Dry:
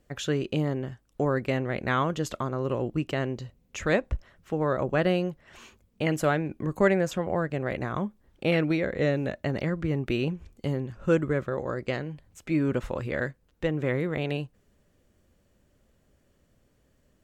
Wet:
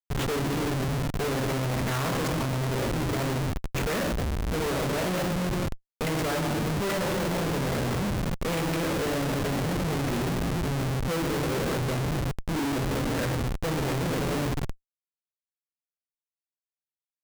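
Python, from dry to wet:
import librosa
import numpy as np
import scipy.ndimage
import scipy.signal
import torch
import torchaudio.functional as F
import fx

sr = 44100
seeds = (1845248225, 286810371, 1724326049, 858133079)

y = fx.room_shoebox(x, sr, seeds[0], volume_m3=1100.0, walls='mixed', distance_m=1.6)
y = y * (1.0 - 0.36 / 2.0 + 0.36 / 2.0 * np.cos(2.0 * np.pi * 1.8 * (np.arange(len(y)) / sr)))
y = fx.schmitt(y, sr, flips_db=-33.0)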